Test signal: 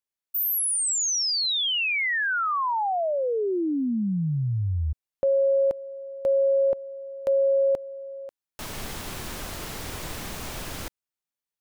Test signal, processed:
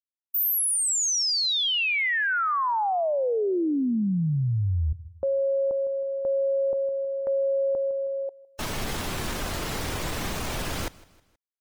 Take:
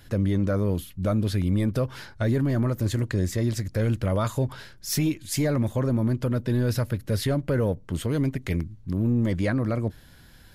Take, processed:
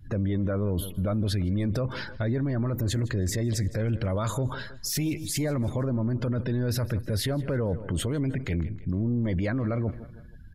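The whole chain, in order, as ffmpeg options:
-af "afftdn=nr=27:nf=-46,aecho=1:1:159|318|477:0.0708|0.0311|0.0137,alimiter=level_in=3.5dB:limit=-24dB:level=0:latency=1:release=11,volume=-3.5dB,volume=6.5dB"

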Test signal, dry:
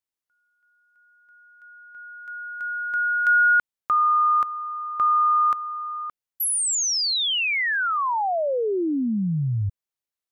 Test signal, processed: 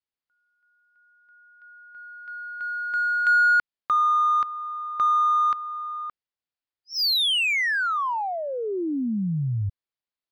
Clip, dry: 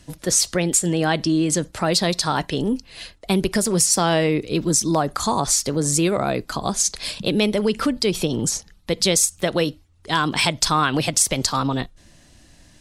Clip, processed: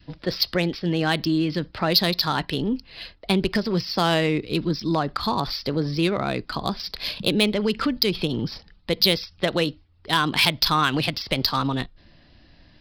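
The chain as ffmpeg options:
-filter_complex "[0:a]aresample=11025,aresample=44100,adynamicequalizer=threshold=0.0178:dfrequency=610:dqfactor=1.3:tfrequency=610:tqfactor=1.3:attack=5:release=100:ratio=0.375:range=3:mode=cutabove:tftype=bell,asplit=2[a][b];[b]adynamicsmooth=sensitivity=1.5:basefreq=3.3k,volume=1.5dB[c];[a][c]amix=inputs=2:normalize=0,aemphasis=mode=production:type=75kf,volume=-8.5dB"

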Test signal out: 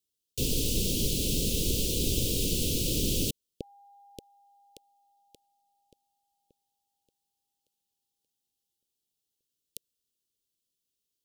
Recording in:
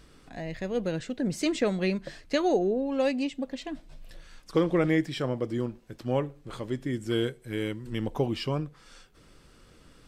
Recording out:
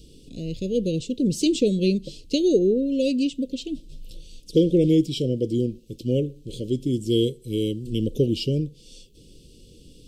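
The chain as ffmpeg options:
-af "asuperstop=centerf=1200:order=12:qfactor=0.52,volume=7dB"

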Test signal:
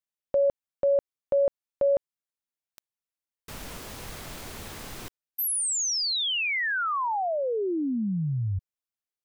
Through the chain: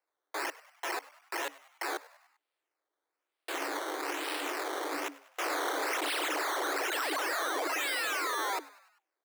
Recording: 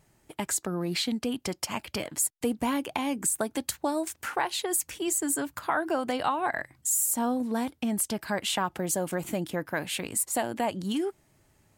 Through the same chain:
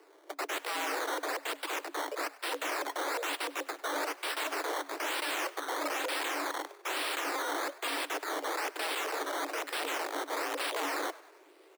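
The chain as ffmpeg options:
-filter_complex "[0:a]alimiter=limit=-18.5dB:level=0:latency=1:release=216,acrusher=samples=13:mix=1:aa=0.000001:lfo=1:lforange=13:lforate=1.1,aeval=exprs='(mod(50.1*val(0)+1,2)-1)/50.1':c=same,afreqshift=280,asplit=5[a][b][c][d][e];[b]adelay=99,afreqshift=120,volume=-20dB[f];[c]adelay=198,afreqshift=240,volume=-25.5dB[g];[d]adelay=297,afreqshift=360,volume=-31dB[h];[e]adelay=396,afreqshift=480,volume=-36.5dB[i];[a][f][g][h][i]amix=inputs=5:normalize=0,volume=5dB"

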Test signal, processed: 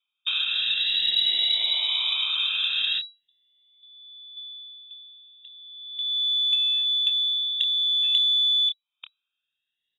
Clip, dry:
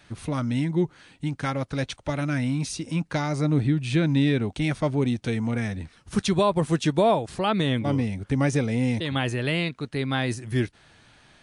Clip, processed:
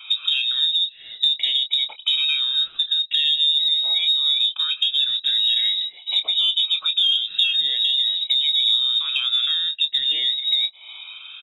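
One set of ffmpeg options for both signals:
-filter_complex "[0:a]afftfilt=real='re*pow(10,23/40*sin(2*PI*(1.1*log(max(b,1)*sr/1024/100)/log(2)-(-0.45)*(pts-256)/sr)))':imag='im*pow(10,23/40*sin(2*PI*(1.1*log(max(b,1)*sr/1024/100)/log(2)-(-0.45)*(pts-256)/sr)))':win_size=1024:overlap=0.75,asplit=2[a][b];[b]aeval=exprs='val(0)*gte(abs(val(0)),0.0501)':c=same,volume=-10.5dB[c];[a][c]amix=inputs=2:normalize=0,alimiter=limit=-12.5dB:level=0:latency=1:release=25,acompressor=threshold=-33dB:ratio=8,lowshelf=f=350:g=-4,asplit=2[d][e];[e]adelay=27,volume=-9dB[f];[d][f]amix=inputs=2:normalize=0,lowpass=f=3.3k:t=q:w=0.5098,lowpass=f=3.3k:t=q:w=0.6013,lowpass=f=3.3k:t=q:w=0.9,lowpass=f=3.3k:t=q:w=2.563,afreqshift=-3900,aexciter=amount=6.4:drive=7.2:freq=2.6k"

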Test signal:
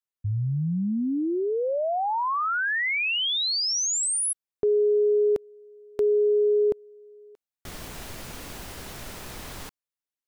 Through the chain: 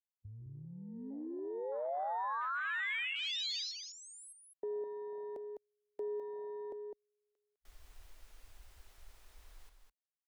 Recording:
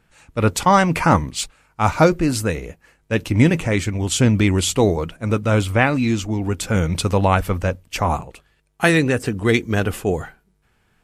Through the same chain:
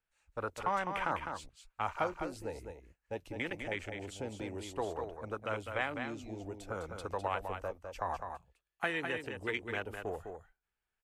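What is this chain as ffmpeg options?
-filter_complex "[0:a]afwtdn=0.0631,equalizer=f=160:t=o:w=2.3:g=-14,acrossover=split=270|550|4400[a][b][c][d];[a]acompressor=threshold=-39dB:ratio=8[e];[b]acompressor=threshold=-37dB:ratio=2.5[f];[c]acompressor=threshold=-29dB:ratio=2[g];[d]acompressor=threshold=-51dB:ratio=1.5[h];[e][f][g][h]amix=inputs=4:normalize=0,aecho=1:1:205:0.473,volume=-8.5dB"

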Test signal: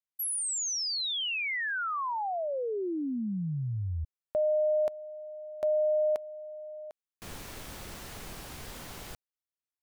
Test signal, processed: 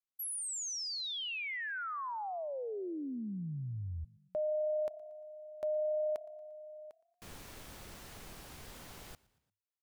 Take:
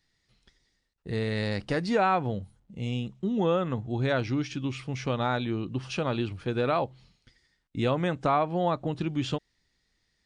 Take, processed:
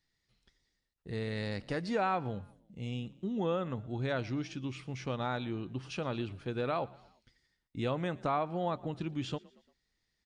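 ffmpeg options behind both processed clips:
-filter_complex "[0:a]asplit=4[a][b][c][d];[b]adelay=116,afreqshift=33,volume=-23dB[e];[c]adelay=232,afreqshift=66,volume=-28.8dB[f];[d]adelay=348,afreqshift=99,volume=-34.7dB[g];[a][e][f][g]amix=inputs=4:normalize=0,volume=-7dB"

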